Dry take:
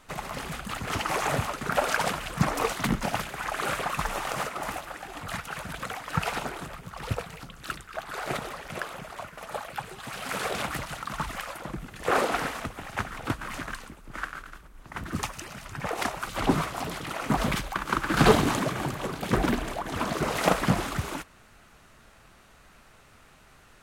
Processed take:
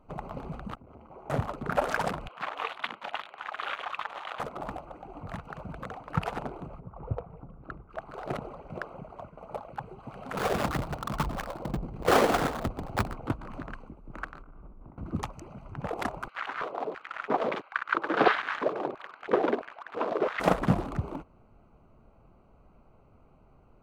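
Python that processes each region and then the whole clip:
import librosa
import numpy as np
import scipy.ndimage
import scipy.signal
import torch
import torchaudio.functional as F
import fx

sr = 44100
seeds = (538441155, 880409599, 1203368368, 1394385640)

y = fx.chain(x, sr, fx.high_shelf(hz=2700.0, db=-10.0),
    fx.comb_fb(f0_hz=75.0, decay_s=1.1, harmonics='odd', damping=0.0, mix_pct=80),
    fx.transformer_sat(knee_hz=1100.0), at=(0.75, 1.3))
y = fx.chain(y, sr, fx.highpass(hz=950.0, slope=12),
    fx.high_shelf_res(hz=4800.0, db=-13.5, q=3.0), at=(2.28, 4.4))
y = fx.chain(y, sr, fx.lowpass(hz=1400.0, slope=12),
    fx.dynamic_eq(hz=230.0, q=1.1, threshold_db=-46.0, ratio=4.0, max_db=-6), at=(6.8, 7.9))
y = fx.chain(y, sr, fx.halfwave_hold(),
    fx.echo_single(ms=122, db=-15.0), at=(10.37, 13.15))
y = fx.chain(y, sr, fx.lowpass(hz=2100.0, slope=12),
    fx.over_compress(threshold_db=-48.0, ratio=-1.0),
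    fx.room_flutter(wall_m=10.9, rt60_s=0.43), at=(14.43, 14.98))
y = fx.chain(y, sr, fx.lowpass(hz=4200.0, slope=24),
    fx.filter_lfo_highpass(shape='square', hz=1.5, low_hz=450.0, high_hz=1600.0, q=2.4), at=(16.28, 20.4))
y = fx.wiener(y, sr, points=25)
y = fx.high_shelf(y, sr, hz=2500.0, db=-8.5)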